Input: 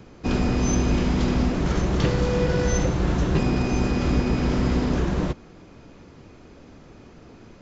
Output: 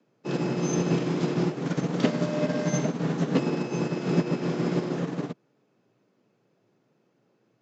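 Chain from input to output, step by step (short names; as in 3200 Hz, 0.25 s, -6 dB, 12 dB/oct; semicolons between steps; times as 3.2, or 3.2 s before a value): frequency shift +110 Hz; upward expander 2.5:1, over -32 dBFS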